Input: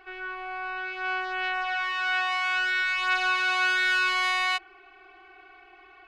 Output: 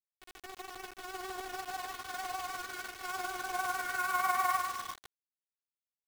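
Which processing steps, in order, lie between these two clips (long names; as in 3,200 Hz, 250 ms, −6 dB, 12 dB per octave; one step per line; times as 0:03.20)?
far-end echo of a speakerphone 320 ms, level −13 dB
pitch vibrato 6.4 Hz 54 cents
high shelf with overshoot 2,100 Hz −6.5 dB, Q 1.5
repeating echo 121 ms, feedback 32%, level −4 dB
on a send at −11.5 dB: convolution reverb RT60 3.1 s, pre-delay 3 ms
on the sum: band-pass filter sweep 510 Hz → 1,300 Hz, 0:03.37–0:05.36
loudspeaker in its box 130–6,200 Hz, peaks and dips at 410 Hz +6 dB, 940 Hz +7 dB, 2,200 Hz +5 dB, 4,000 Hz +4 dB
bit-depth reduction 6 bits, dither none
amplitude tremolo 20 Hz, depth 41%
expander for the loud parts 1.5 to 1, over −41 dBFS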